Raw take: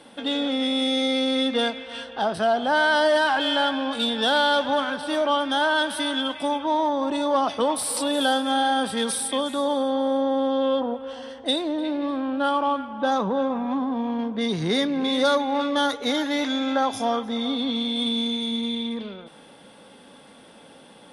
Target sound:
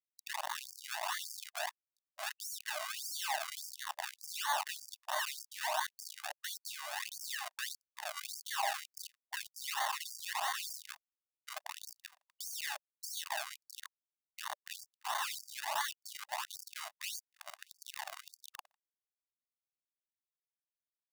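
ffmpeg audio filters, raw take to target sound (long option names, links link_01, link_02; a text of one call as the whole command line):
ffmpeg -i in.wav -filter_complex "[0:a]acrossover=split=340|1200[link_01][link_02][link_03];[link_01]acompressor=threshold=-39dB:ratio=10[link_04];[link_04][link_02][link_03]amix=inputs=3:normalize=0,aecho=1:1:408:0.1,aresample=16000,asoftclip=type=hard:threshold=-22.5dB,aresample=44100,acrusher=bits=3:mix=0:aa=0.000001,highpass=65,acrusher=samples=34:mix=1:aa=0.000001:lfo=1:lforange=34:lforate=1.5,aecho=1:1:1.1:0.5,alimiter=limit=-23.5dB:level=0:latency=1:release=21,afftfilt=real='re*gte(b*sr/1024,560*pow(4700/560,0.5+0.5*sin(2*PI*1.7*pts/sr)))':imag='im*gte(b*sr/1024,560*pow(4700/560,0.5+0.5*sin(2*PI*1.7*pts/sr)))':win_size=1024:overlap=0.75,volume=-1.5dB" out.wav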